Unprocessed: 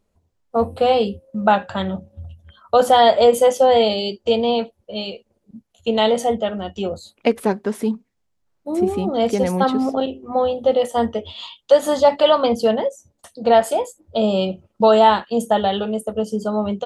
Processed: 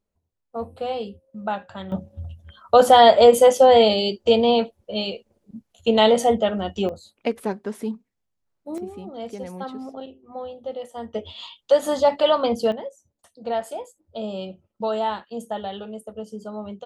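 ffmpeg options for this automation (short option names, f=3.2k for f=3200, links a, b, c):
-af "asetnsamples=n=441:p=0,asendcmd='1.92 volume volume 1dB;6.89 volume volume -7dB;8.78 volume volume -15dB;11.14 volume volume -4dB;12.72 volume volume -12dB',volume=-11.5dB"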